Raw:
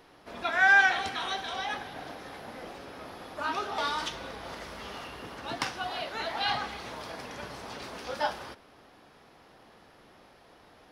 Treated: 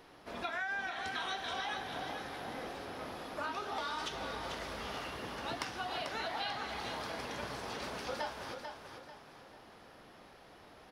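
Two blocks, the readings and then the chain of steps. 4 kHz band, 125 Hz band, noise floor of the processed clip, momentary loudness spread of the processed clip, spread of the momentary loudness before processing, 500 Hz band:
-5.5 dB, -2.0 dB, -57 dBFS, 19 LU, 19 LU, -3.5 dB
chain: compressor 16:1, threshold -34 dBFS, peak gain reduction 18 dB; feedback echo 0.442 s, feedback 37%, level -7 dB; gain -1 dB

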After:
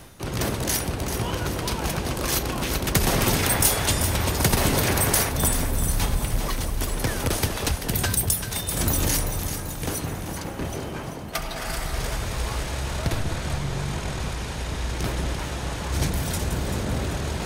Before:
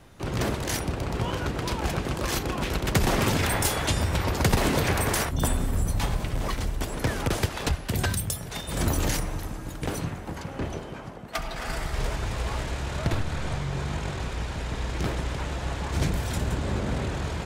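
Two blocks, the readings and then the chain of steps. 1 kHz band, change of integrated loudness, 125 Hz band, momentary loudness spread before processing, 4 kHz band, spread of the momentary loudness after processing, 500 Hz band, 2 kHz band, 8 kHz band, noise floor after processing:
+1.5 dB, +3.0 dB, +1.5 dB, 9 LU, +4.0 dB, 10 LU, +1.5 dB, +2.0 dB, +8.0 dB, -33 dBFS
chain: high shelf 5800 Hz +11.5 dB; notch 7400 Hz, Q 13; reverse; upward compressor, threshold -27 dBFS; reverse; echo with dull and thin repeats by turns 0.194 s, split 960 Hz, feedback 71%, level -6 dB

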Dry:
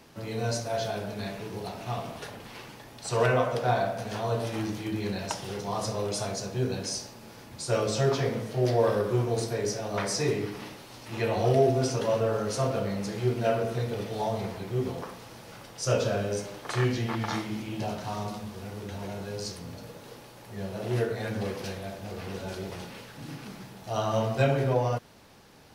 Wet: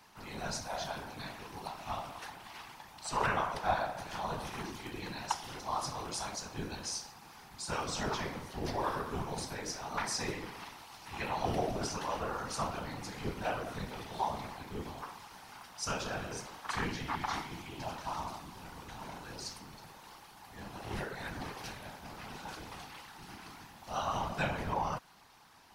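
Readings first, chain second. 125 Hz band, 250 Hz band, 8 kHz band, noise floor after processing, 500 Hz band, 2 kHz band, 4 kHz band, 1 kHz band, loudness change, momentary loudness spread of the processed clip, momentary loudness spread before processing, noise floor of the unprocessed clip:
-13.5 dB, -10.5 dB, -4.5 dB, -55 dBFS, -13.5 dB, -3.5 dB, -4.5 dB, -2.5 dB, -8.5 dB, 14 LU, 17 LU, -48 dBFS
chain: resonant low shelf 700 Hz -6.5 dB, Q 3; whisperiser; gain -4.5 dB

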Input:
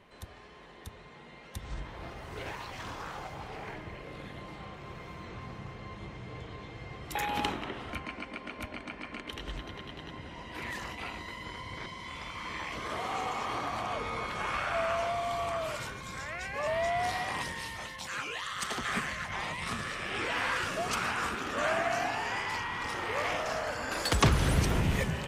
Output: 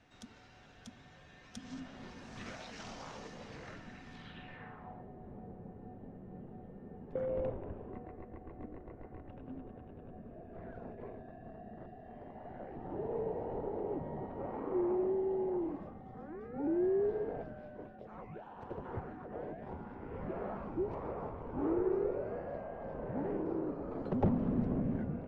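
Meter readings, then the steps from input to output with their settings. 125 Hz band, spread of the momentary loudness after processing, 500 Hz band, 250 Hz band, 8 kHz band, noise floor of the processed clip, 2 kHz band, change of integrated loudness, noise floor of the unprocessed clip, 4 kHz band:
-7.0 dB, 18 LU, 0.0 dB, +2.0 dB, under -20 dB, -57 dBFS, -21.0 dB, -5.0 dB, -51 dBFS, under -20 dB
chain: low-pass sweep 6500 Hz -> 760 Hz, 4.12–5.09; frequency shift -310 Hz; gain -7 dB

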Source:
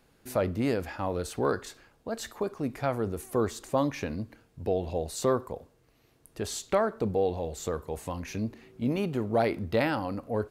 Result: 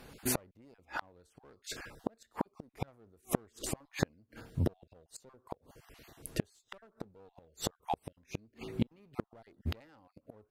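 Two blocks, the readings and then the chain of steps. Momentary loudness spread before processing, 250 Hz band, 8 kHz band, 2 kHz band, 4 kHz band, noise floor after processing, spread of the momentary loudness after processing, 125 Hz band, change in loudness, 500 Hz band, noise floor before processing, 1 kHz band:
10 LU, -9.0 dB, -2.0 dB, -8.5 dB, -4.5 dB, -78 dBFS, 22 LU, -6.0 dB, -9.0 dB, -15.5 dB, -65 dBFS, -10.0 dB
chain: random spectral dropouts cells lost 22%; one-sided clip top -31 dBFS; flipped gate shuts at -29 dBFS, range -40 dB; gain +11 dB

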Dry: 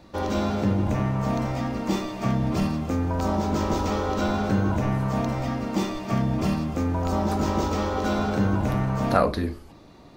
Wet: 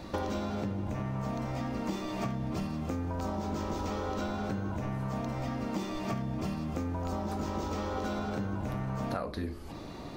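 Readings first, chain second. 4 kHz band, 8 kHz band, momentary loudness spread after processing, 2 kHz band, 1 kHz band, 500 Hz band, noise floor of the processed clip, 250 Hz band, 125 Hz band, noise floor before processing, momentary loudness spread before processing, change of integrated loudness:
-8.5 dB, -9.0 dB, 1 LU, -9.0 dB, -9.5 dB, -9.5 dB, -42 dBFS, -9.5 dB, -9.5 dB, -48 dBFS, 4 LU, -9.5 dB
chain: compressor 16:1, threshold -37 dBFS, peak gain reduction 23 dB; gain +6.5 dB

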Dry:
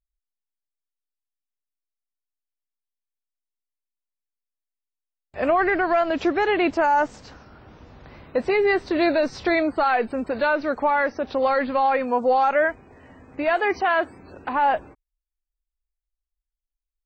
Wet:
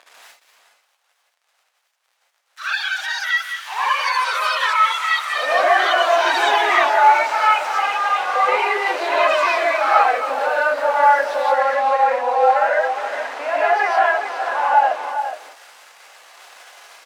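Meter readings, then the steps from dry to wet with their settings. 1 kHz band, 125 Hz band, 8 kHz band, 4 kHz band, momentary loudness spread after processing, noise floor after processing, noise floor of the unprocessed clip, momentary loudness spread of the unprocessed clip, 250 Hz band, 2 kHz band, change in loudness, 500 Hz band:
+8.5 dB, under -25 dB, n/a, +13.5 dB, 8 LU, -68 dBFS, under -85 dBFS, 7 LU, -13.5 dB, +8.0 dB, +4.5 dB, +2.5 dB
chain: zero-crossing step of -26.5 dBFS; HPF 600 Hz 24 dB/oct; high shelf 2800 Hz -11 dB; in parallel at -2 dB: compressor, threshold -32 dBFS, peak gain reduction 14.5 dB; on the sum: air absorption 52 m; on a send: echo 0.416 s -9 dB; on the sum: non-linear reverb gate 0.2 s rising, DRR -6.5 dB; echoes that change speed 99 ms, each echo +7 st, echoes 2; gain -3.5 dB

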